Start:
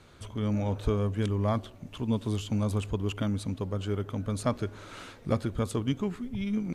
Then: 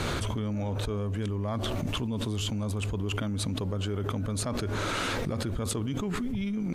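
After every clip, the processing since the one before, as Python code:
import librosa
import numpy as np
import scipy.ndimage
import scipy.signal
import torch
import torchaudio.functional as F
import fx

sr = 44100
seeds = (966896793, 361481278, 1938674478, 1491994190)

y = fx.env_flatten(x, sr, amount_pct=100)
y = F.gain(torch.from_numpy(y), -8.0).numpy()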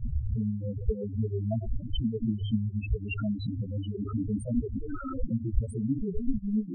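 y = fx.chorus_voices(x, sr, voices=6, hz=0.91, base_ms=16, depth_ms=2.4, mix_pct=55)
y = fx.transient(y, sr, attack_db=6, sustain_db=-10)
y = fx.spec_topn(y, sr, count=4)
y = F.gain(torch.from_numpy(y), 5.5).numpy()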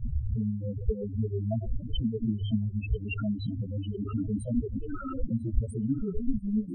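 y = fx.echo_feedback(x, sr, ms=995, feedback_pct=34, wet_db=-23.5)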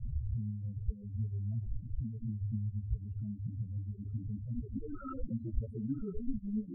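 y = fx.filter_sweep_lowpass(x, sr, from_hz=140.0, to_hz=1600.0, start_s=4.56, end_s=5.12, q=1.4)
y = F.gain(torch.from_numpy(y), -7.5).numpy()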